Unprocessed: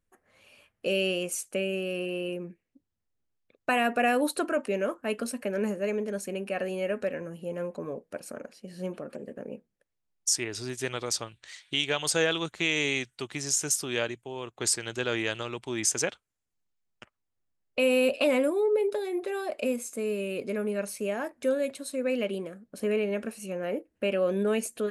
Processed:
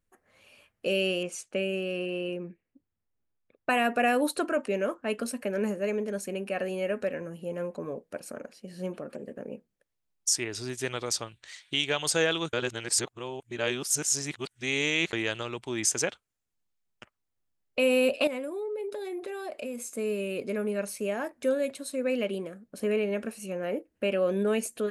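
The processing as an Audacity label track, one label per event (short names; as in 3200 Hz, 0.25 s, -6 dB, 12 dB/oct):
1.230000	5.190000	low-pass opened by the level closes to 2300 Hz, open at -24 dBFS
12.530000	15.130000	reverse
18.270000	19.890000	compressor 4:1, threshold -33 dBFS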